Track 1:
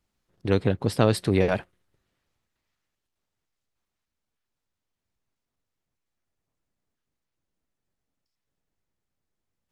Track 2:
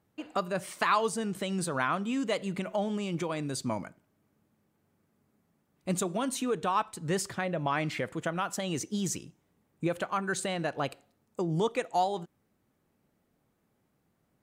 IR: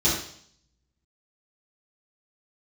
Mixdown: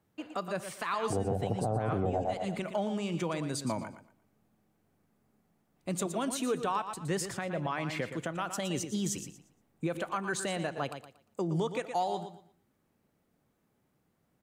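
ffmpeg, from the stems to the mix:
-filter_complex "[0:a]lowpass=frequency=750:width_type=q:width=8.8,adelay=650,volume=-2.5dB,asplit=2[link_01][link_02];[link_02]volume=-3.5dB[link_03];[1:a]volume=-1dB,asplit=2[link_04][link_05];[link_05]volume=-10dB[link_06];[link_03][link_06]amix=inputs=2:normalize=0,aecho=0:1:117|234|351|468:1|0.24|0.0576|0.0138[link_07];[link_01][link_04][link_07]amix=inputs=3:normalize=0,acrossover=split=160[link_08][link_09];[link_09]acompressor=threshold=-22dB:ratio=6[link_10];[link_08][link_10]amix=inputs=2:normalize=0,alimiter=limit=-21.5dB:level=0:latency=1:release=228"

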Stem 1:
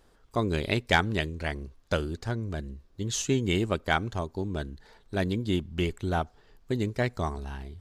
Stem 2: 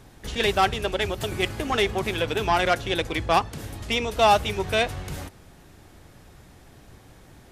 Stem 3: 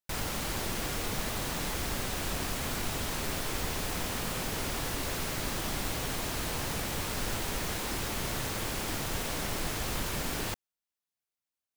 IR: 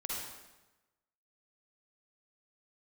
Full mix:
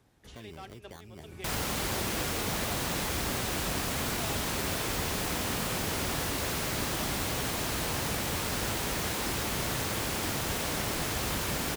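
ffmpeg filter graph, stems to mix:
-filter_complex "[0:a]lowshelf=frequency=490:gain=4.5,acrusher=samples=17:mix=1:aa=0.000001,volume=-20dB,asplit=2[link_01][link_02];[1:a]volume=-16dB[link_03];[2:a]adelay=1350,volume=2.5dB[link_04];[link_02]apad=whole_len=331405[link_05];[link_03][link_05]sidechaincompress=threshold=-48dB:ratio=4:attack=10:release=134[link_06];[link_01][link_06]amix=inputs=2:normalize=0,acrossover=split=410|3000[link_07][link_08][link_09];[link_08]acompressor=threshold=-41dB:ratio=6[link_10];[link_07][link_10][link_09]amix=inputs=3:normalize=0,alimiter=level_in=9dB:limit=-24dB:level=0:latency=1:release=361,volume=-9dB,volume=0dB[link_11];[link_04][link_11]amix=inputs=2:normalize=0,highpass=50"

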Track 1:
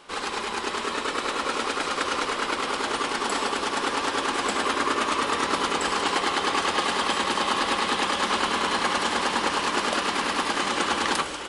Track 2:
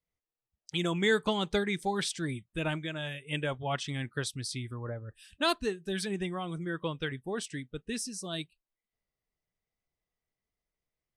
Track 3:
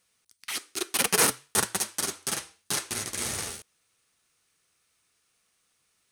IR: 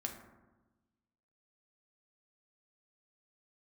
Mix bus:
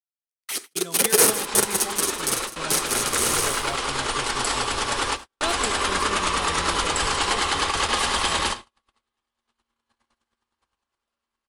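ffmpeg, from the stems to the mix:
-filter_complex "[0:a]bandreject=frequency=56.89:width_type=h:width=4,bandreject=frequency=113.78:width_type=h:width=4,bandreject=frequency=170.67:width_type=h:width=4,bandreject=frequency=227.56:width_type=h:width=4,bandreject=frequency=284.45:width_type=h:width=4,bandreject=frequency=341.34:width_type=h:width=4,bandreject=frequency=398.23:width_type=h:width=4,bandreject=frequency=455.12:width_type=h:width=4,bandreject=frequency=512.01:width_type=h:width=4,bandreject=frequency=568.9:width_type=h:width=4,bandreject=frequency=625.79:width_type=h:width=4,bandreject=frequency=682.68:width_type=h:width=4,bandreject=frequency=739.57:width_type=h:width=4,bandreject=frequency=796.46:width_type=h:width=4,bandreject=frequency=853.35:width_type=h:width=4,bandreject=frequency=910.24:width_type=h:width=4,bandreject=frequency=967.13:width_type=h:width=4,bandreject=frequency=1024.02:width_type=h:width=4,bandreject=frequency=1080.91:width_type=h:width=4,bandreject=frequency=1137.8:width_type=h:width=4,bandreject=frequency=1194.69:width_type=h:width=4,bandreject=frequency=1251.58:width_type=h:width=4,bandreject=frequency=1308.47:width_type=h:width=4,bandreject=frequency=1365.36:width_type=h:width=4,bandreject=frequency=1422.25:width_type=h:width=4,bandreject=frequency=1479.14:width_type=h:width=4,bandreject=frequency=1536.03:width_type=h:width=4,bandreject=frequency=1592.92:width_type=h:width=4,bandreject=frequency=1649.81:width_type=h:width=4,bandreject=frequency=1706.7:width_type=h:width=4,bandreject=frequency=1763.59:width_type=h:width=4,bandreject=frequency=1820.48:width_type=h:width=4,bandreject=frequency=1877.37:width_type=h:width=4,bandreject=frequency=1934.26:width_type=h:width=4,asubboost=boost=11.5:cutoff=70,adelay=1150,volume=-5dB,asplit=2[link_01][link_02];[link_02]volume=-14dB[link_03];[1:a]equalizer=frequency=710:width_type=o:width=0.84:gain=5,volume=-9dB,asplit=2[link_04][link_05];[2:a]equalizer=frequency=420:width_type=o:width=1.1:gain=9,volume=-2dB,asplit=3[link_06][link_07][link_08];[link_07]volume=-12.5dB[link_09];[link_08]volume=-11.5dB[link_10];[link_05]apad=whole_len=557223[link_11];[link_01][link_11]sidechaingate=range=-42dB:threshold=-57dB:ratio=16:detection=peak[link_12];[3:a]atrim=start_sample=2205[link_13];[link_03][link_09]amix=inputs=2:normalize=0[link_14];[link_14][link_13]afir=irnorm=-1:irlink=0[link_15];[link_10]aecho=0:1:155:1[link_16];[link_12][link_04][link_06][link_15][link_16]amix=inputs=5:normalize=0,agate=range=-45dB:threshold=-38dB:ratio=16:detection=peak,highshelf=frequency=5500:gain=8.5,dynaudnorm=framelen=190:gausssize=13:maxgain=5dB"

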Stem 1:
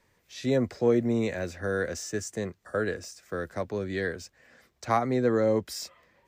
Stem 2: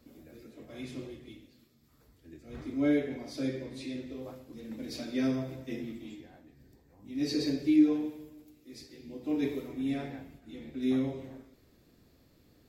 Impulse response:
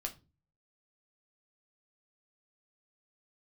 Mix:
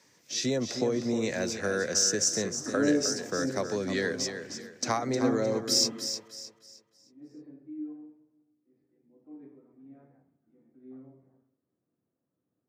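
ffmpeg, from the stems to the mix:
-filter_complex "[0:a]acompressor=threshold=-27dB:ratio=6,volume=2dB,asplit=3[link_01][link_02][link_03];[link_02]volume=-9dB[link_04];[1:a]lowpass=frequency=1400:width=0.5412,lowpass=frequency=1400:width=1.3066,volume=0dB,asplit=2[link_05][link_06];[link_06]volume=-21.5dB[link_07];[link_03]apad=whole_len=559274[link_08];[link_05][link_08]sidechaingate=range=-28dB:threshold=-57dB:ratio=16:detection=peak[link_09];[2:a]atrim=start_sample=2205[link_10];[link_07][link_10]afir=irnorm=-1:irlink=0[link_11];[link_04]aecho=0:1:309|618|927|1236|1545:1|0.33|0.109|0.0359|0.0119[link_12];[link_01][link_09][link_11][link_12]amix=inputs=4:normalize=0,highpass=frequency=120:width=0.5412,highpass=frequency=120:width=1.3066,equalizer=frequency=5700:width_type=o:width=0.95:gain=13.5"

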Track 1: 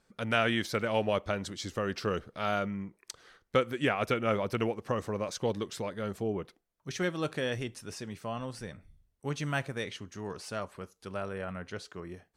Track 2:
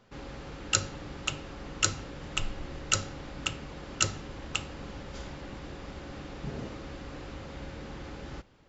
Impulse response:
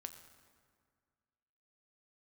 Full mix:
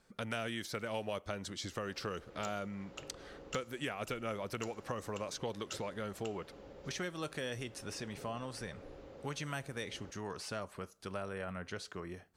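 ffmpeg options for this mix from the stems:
-filter_complex "[0:a]volume=1dB,asplit=2[link_01][link_02];[link_02]volume=-22dB[link_03];[1:a]equalizer=frequency=490:width=1.1:gain=13.5,asoftclip=type=tanh:threshold=-8dB,adelay=1700,volume=-19dB,asplit=2[link_04][link_05];[link_05]volume=-5dB[link_06];[2:a]atrim=start_sample=2205[link_07];[link_03][link_06]amix=inputs=2:normalize=0[link_08];[link_08][link_07]afir=irnorm=-1:irlink=0[link_09];[link_01][link_04][link_09]amix=inputs=3:normalize=0,acrossover=split=650|5500[link_10][link_11][link_12];[link_10]acompressor=threshold=-42dB:ratio=4[link_13];[link_11]acompressor=threshold=-42dB:ratio=4[link_14];[link_12]acompressor=threshold=-49dB:ratio=4[link_15];[link_13][link_14][link_15]amix=inputs=3:normalize=0"

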